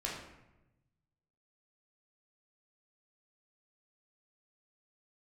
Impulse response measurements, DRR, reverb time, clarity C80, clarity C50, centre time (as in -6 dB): -4.0 dB, 0.95 s, 5.5 dB, 2.5 dB, 50 ms